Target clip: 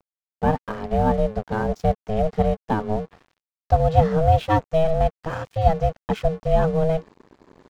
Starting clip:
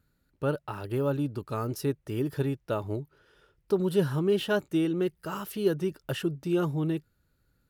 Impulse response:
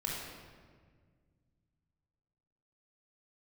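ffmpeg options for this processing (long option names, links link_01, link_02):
-af "tiltshelf=frequency=1300:gain=5,areverse,acompressor=mode=upward:threshold=-32dB:ratio=2.5,areverse,aeval=exprs='val(0)*sin(2*PI*320*n/s)':channel_layout=same,aresample=16000,aresample=44100,aeval=exprs='sgn(val(0))*max(abs(val(0))-0.00335,0)':channel_layout=same,volume=7.5dB"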